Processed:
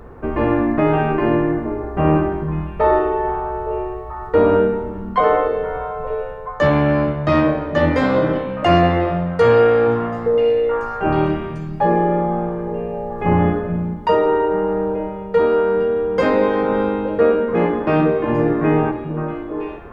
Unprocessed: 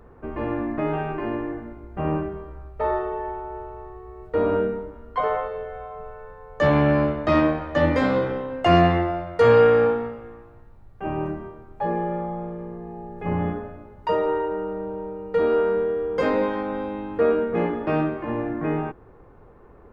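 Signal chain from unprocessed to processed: delay with a stepping band-pass 0.433 s, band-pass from 160 Hz, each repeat 1.4 oct, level -5 dB; vocal rider within 4 dB 0.5 s; gain +6 dB

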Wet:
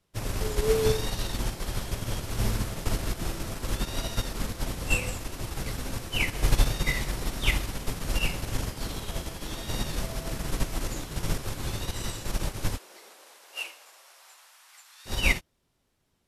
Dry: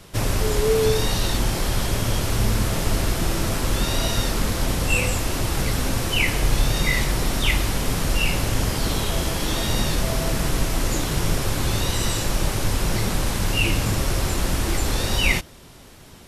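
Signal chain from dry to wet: 12.76–15.05 HPF 340 Hz -> 1100 Hz 24 dB/oct; upward expander 2.5:1, over -33 dBFS

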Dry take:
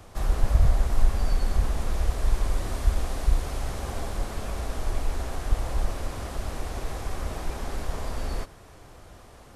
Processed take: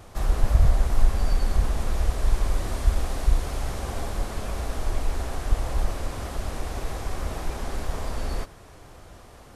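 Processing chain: wow and flutter 26 cents; gain +1.5 dB

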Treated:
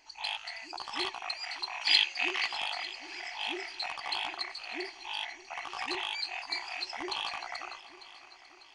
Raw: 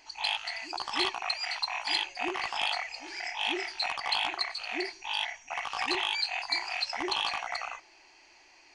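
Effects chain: 1.81–2.47 weighting filter D; on a send: multi-head echo 0.299 s, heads second and third, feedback 49%, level -18 dB; on the sum: gain -5 dB

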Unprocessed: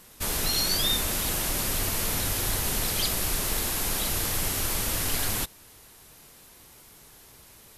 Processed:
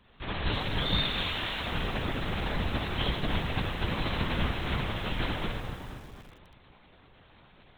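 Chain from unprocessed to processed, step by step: 0.97–1.59 tilt +4 dB/oct; dark delay 0.243 s, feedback 38%, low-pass 1400 Hz, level -7 dB; plate-style reverb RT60 1.8 s, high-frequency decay 0.8×, DRR -2.5 dB; LPC vocoder at 8 kHz whisper; lo-fi delay 0.32 s, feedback 35%, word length 6-bit, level -14.5 dB; gain -6.5 dB

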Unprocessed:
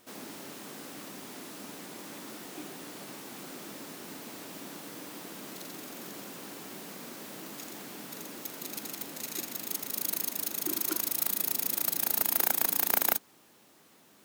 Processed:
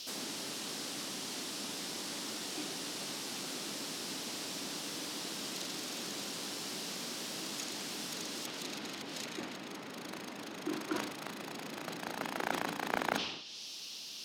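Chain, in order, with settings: band noise 2600–5800 Hz -52 dBFS; high shelf 3800 Hz +10.5 dB; treble ducked by the level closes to 1900 Hz, closed at -24.5 dBFS; sustainer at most 58 dB/s

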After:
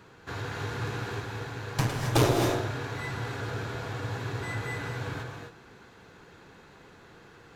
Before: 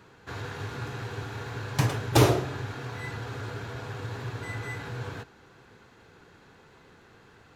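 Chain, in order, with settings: 1.2–2.36 tube stage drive 16 dB, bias 0.65; non-linear reverb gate 0.29 s rising, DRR 3 dB; gain +1 dB

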